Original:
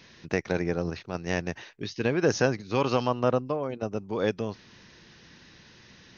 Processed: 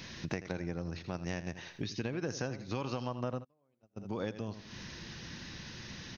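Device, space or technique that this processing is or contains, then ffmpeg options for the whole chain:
ASMR close-microphone chain: -filter_complex "[0:a]lowshelf=f=230:g=6,equalizer=f=430:w=4.8:g=-4.5,aecho=1:1:82|164|246:0.2|0.0479|0.0115,acompressor=threshold=-40dB:ratio=5,highshelf=f=6.1k:g=6.5,asplit=3[a][b][c];[a]afade=t=out:st=3.43:d=0.02[d];[b]agate=range=-37dB:threshold=-35dB:ratio=16:detection=peak,afade=t=in:st=3.43:d=0.02,afade=t=out:st=3.96:d=0.02[e];[c]afade=t=in:st=3.96:d=0.02[f];[d][e][f]amix=inputs=3:normalize=0,volume=4.5dB"

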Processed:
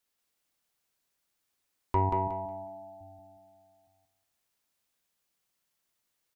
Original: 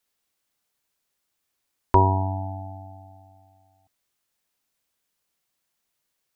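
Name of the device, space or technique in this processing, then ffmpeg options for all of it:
soft clipper into limiter: -filter_complex "[0:a]asoftclip=type=tanh:threshold=-6dB,alimiter=limit=-13dB:level=0:latency=1:release=436,asettb=1/sr,asplit=3[a][b][c];[a]atrim=end=2.094[d];[b]atrim=start=2.09:end=3.01,asetpts=PTS-STARTPTS,afade=t=in:d=0.004:c=qsin,afade=t=out:st=0.916:d=0.004:c=qsin,lowshelf=f=360:g=-9.5[e];[c]atrim=start=3.006[f];[d][e]acrossfade=d=0.004:c1=hsin:c2=qsin[g];[g][f]acrossfade=d=0.004:c1=qsin:c2=hsin,aecho=1:1:182|364|546|728:0.708|0.184|0.0479|0.0124,volume=-4dB"

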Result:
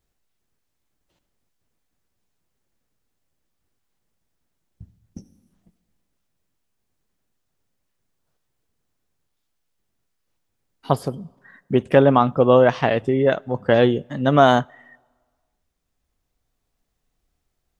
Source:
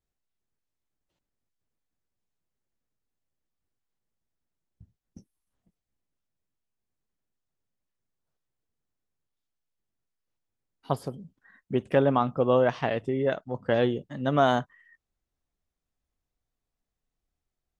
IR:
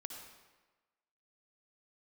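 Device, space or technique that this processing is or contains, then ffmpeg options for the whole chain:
ducked reverb: -filter_complex "[0:a]asplit=3[a][b][c];[1:a]atrim=start_sample=2205[d];[b][d]afir=irnorm=-1:irlink=0[e];[c]apad=whole_len=784796[f];[e][f]sidechaincompress=threshold=-41dB:ratio=16:attack=38:release=1430,volume=-3.5dB[g];[a][g]amix=inputs=2:normalize=0,volume=8dB"

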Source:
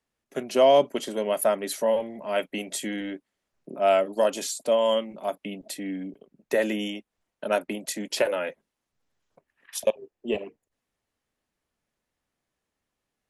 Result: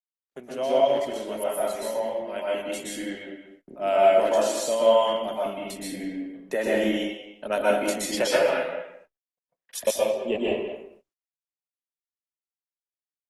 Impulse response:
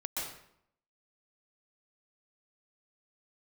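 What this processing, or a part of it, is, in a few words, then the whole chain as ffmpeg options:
speakerphone in a meeting room: -filter_complex "[1:a]atrim=start_sample=2205[a];[0:a][a]afir=irnorm=-1:irlink=0,asplit=2[b][c];[c]adelay=200,highpass=300,lowpass=3.4k,asoftclip=type=hard:threshold=-10.5dB,volume=-10dB[d];[b][d]amix=inputs=2:normalize=0,dynaudnorm=f=510:g=9:m=15dB,agate=range=-38dB:threshold=-44dB:ratio=16:detection=peak,volume=-7dB" -ar 48000 -c:a libopus -b:a 20k

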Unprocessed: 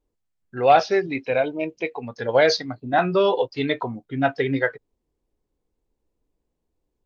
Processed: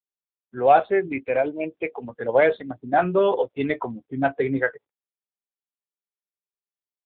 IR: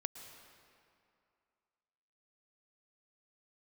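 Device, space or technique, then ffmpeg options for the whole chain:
mobile call with aggressive noise cancelling: -af "highpass=140,afftdn=nr=32:nf=-37" -ar 8000 -c:a libopencore_amrnb -b:a 7950

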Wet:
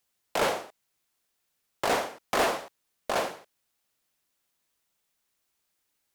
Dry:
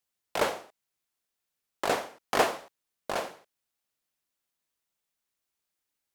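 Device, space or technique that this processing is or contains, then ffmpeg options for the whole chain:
saturation between pre-emphasis and de-emphasis: -af "highshelf=f=4.2k:g=9.5,asoftclip=type=tanh:threshold=-26dB,highshelf=f=4.2k:g=-9.5,volume=7dB"

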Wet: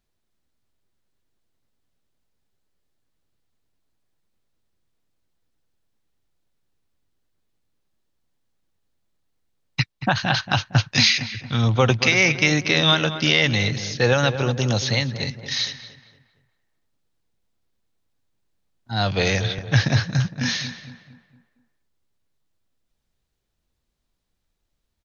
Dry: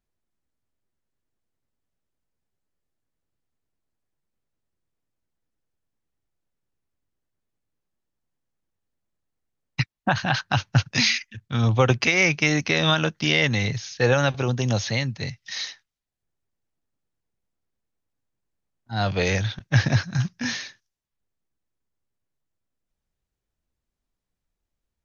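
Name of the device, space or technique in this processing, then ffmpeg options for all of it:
parallel compression: -filter_complex "[0:a]asplit=2[a][b];[b]acompressor=threshold=-36dB:ratio=6,volume=-1dB[c];[a][c]amix=inputs=2:normalize=0,equalizer=f=3.9k:t=o:w=0.81:g=5,asplit=2[d][e];[e]adelay=230,lowpass=f=1.9k:p=1,volume=-10.5dB,asplit=2[f][g];[g]adelay=230,lowpass=f=1.9k:p=1,volume=0.46,asplit=2[h][i];[i]adelay=230,lowpass=f=1.9k:p=1,volume=0.46,asplit=2[j][k];[k]adelay=230,lowpass=f=1.9k:p=1,volume=0.46,asplit=2[l][m];[m]adelay=230,lowpass=f=1.9k:p=1,volume=0.46[n];[d][f][h][j][l][n]amix=inputs=6:normalize=0"

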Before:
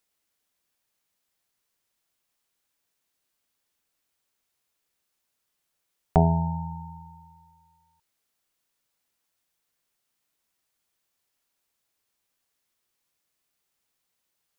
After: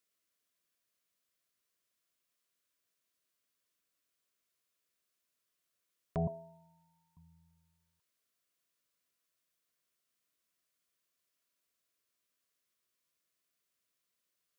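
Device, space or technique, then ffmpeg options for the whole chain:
PA system with an anti-feedback notch: -filter_complex "[0:a]asettb=1/sr,asplit=3[a][b][c];[a]atrim=end=6.274[d];[b]atrim=start=6.27:end=7.17,asetpts=PTS-STARTPTS,afade=t=in:d=0.004:c=qsin,afade=t=out:st=0.896:d=0.004:c=qsin,highpass=660[e];[c]atrim=start=7.166[f];[d][e]acrossfade=d=0.004:c1=hsin:c2=qsin[g];[g][f]acrossfade=d=0.004:c1=qsin:c2=hsin,highpass=f=100:p=1,asuperstop=centerf=840:order=12:qfactor=3.8,alimiter=limit=-19.5dB:level=0:latency=1:release=10,volume=-5.5dB"

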